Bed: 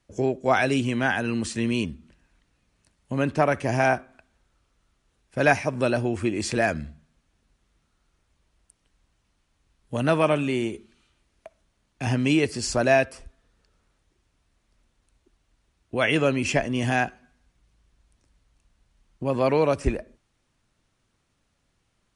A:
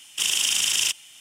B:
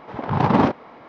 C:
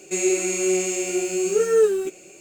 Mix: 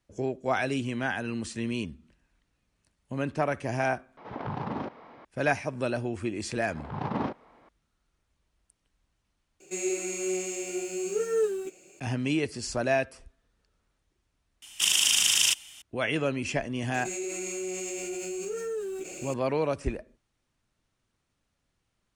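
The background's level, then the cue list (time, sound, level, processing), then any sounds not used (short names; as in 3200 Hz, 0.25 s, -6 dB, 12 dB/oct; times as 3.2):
bed -6.5 dB
4.17 replace with B -6.5 dB + compressor, threshold -23 dBFS
6.61 add B -14 dB
9.6 replace with C -9 dB
14.62 add A -0.5 dB + bell 450 Hz -7.5 dB 0.27 oct
16.94 add C -18 dB + fast leveller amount 70%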